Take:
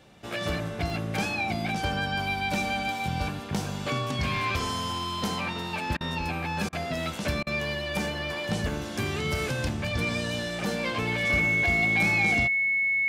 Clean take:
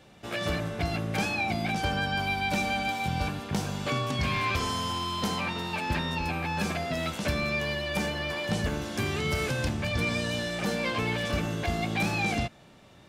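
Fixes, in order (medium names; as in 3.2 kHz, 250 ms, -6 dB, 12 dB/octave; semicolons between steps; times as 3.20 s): band-stop 2.2 kHz, Q 30; interpolate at 0.90/7.45 s, 1.3 ms; interpolate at 5.97/6.69/7.43 s, 36 ms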